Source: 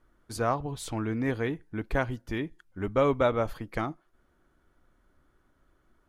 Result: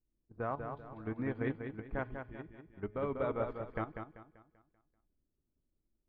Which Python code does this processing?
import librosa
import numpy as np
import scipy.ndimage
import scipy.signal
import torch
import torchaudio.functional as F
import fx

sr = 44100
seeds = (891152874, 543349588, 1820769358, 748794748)

y = scipy.signal.sosfilt(scipy.signal.butter(2, 2100.0, 'lowpass', fs=sr, output='sos'), x)
y = fx.env_lowpass(y, sr, base_hz=340.0, full_db=-26.0)
y = fx.level_steps(y, sr, step_db=10)
y = fx.comb_fb(y, sr, f0_hz=210.0, decay_s=0.77, harmonics='all', damping=0.0, mix_pct=50)
y = fx.echo_feedback(y, sr, ms=194, feedback_pct=45, wet_db=-4.5)
y = fx.upward_expand(y, sr, threshold_db=-48.0, expansion=1.5)
y = y * librosa.db_to_amplitude(2.0)